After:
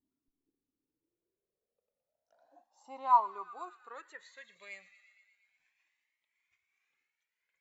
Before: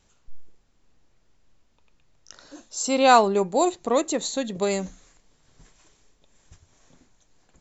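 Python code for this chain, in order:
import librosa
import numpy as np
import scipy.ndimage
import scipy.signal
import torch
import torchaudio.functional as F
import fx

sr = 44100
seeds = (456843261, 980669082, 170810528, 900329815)

y = fx.echo_wet_highpass(x, sr, ms=117, feedback_pct=71, hz=1600.0, wet_db=-14)
y = fx.filter_sweep_bandpass(y, sr, from_hz=270.0, to_hz=2200.0, start_s=0.77, end_s=4.6, q=7.6)
y = fx.comb_cascade(y, sr, direction='rising', hz=0.32)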